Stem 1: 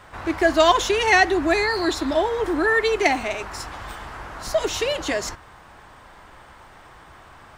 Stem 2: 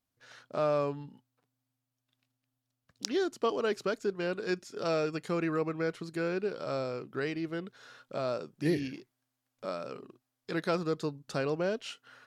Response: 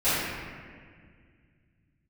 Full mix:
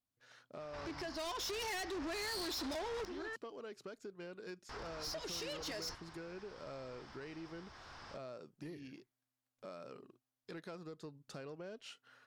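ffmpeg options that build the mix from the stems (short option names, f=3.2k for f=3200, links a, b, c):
-filter_complex "[0:a]acompressor=threshold=-26dB:ratio=5,lowpass=f=5.2k:t=q:w=5.9,adelay=600,volume=-4.5dB,asplit=3[a][b][c];[a]atrim=end=3.36,asetpts=PTS-STARTPTS,afade=t=out:st=3.356:d=0.004:c=hsin[d];[b]atrim=start=3.36:end=4.69,asetpts=PTS-STARTPTS,volume=0[e];[c]atrim=start=4.69,asetpts=PTS-STARTPTS,afade=t=in:d=0.004:c=hsin[f];[d][e][f]concat=n=3:v=0:a=1[g];[1:a]acompressor=threshold=-35dB:ratio=10,volume=-8.5dB,asplit=2[h][i];[i]apad=whole_len=360341[j];[g][j]sidechaincompress=threshold=-51dB:ratio=4:attack=5.1:release=1080[k];[k][h]amix=inputs=2:normalize=0,asoftclip=type=tanh:threshold=-38.5dB"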